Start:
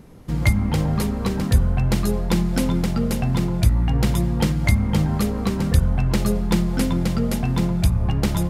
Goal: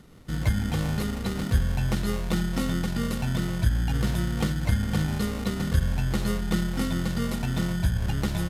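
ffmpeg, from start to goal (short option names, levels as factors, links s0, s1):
-filter_complex "[0:a]equalizer=f=3900:t=o:w=0.3:g=5.5,acrossover=split=1600[s0][s1];[s0]acrusher=samples=27:mix=1:aa=0.000001[s2];[s1]alimiter=limit=0.0668:level=0:latency=1[s3];[s2][s3]amix=inputs=2:normalize=0,aresample=32000,aresample=44100,volume=0.501"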